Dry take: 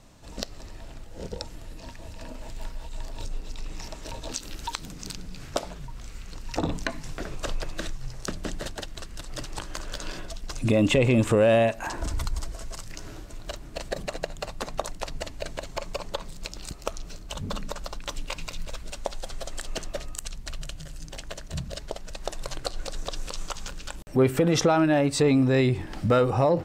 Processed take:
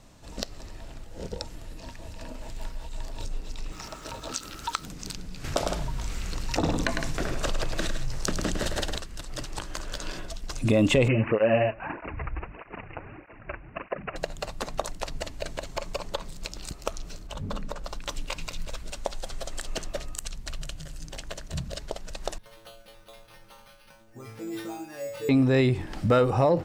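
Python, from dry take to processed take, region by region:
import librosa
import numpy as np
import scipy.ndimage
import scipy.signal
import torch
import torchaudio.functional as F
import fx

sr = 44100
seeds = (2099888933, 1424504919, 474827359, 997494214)

y = fx.chain(x, sr, fx.highpass(hz=81.0, slope=6),
    fx.peak_eq(hz=1300.0, db=13.5, octaves=0.27),
    fx.quant_dither(seeds[0], bits=10, dither='none'), at=(3.72, 4.86))
y = fx.chain(y, sr, fx.echo_multitap(ms=(104, 161), db=(-7.0, -12.0)),
    fx.env_flatten(amount_pct=50), at=(5.44, 8.98))
y = fx.chain(y, sr, fx.curve_eq(hz=(1700.0, 5400.0, 10000.0), db=(0, 9, -2)),
    fx.resample_bad(factor=8, down='none', up='filtered'),
    fx.flanger_cancel(hz=1.6, depth_ms=5.5), at=(11.08, 14.16))
y = fx.chain(y, sr, fx.high_shelf(hz=2500.0, db=-8.5),
    fx.hum_notches(base_hz=60, count=9), at=(17.27, 17.87))
y = fx.chain(y, sr, fx.stiff_resonator(f0_hz=110.0, decay_s=0.81, stiffness=0.002),
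    fx.resample_bad(factor=6, down='none', up='hold'), at=(22.38, 25.29))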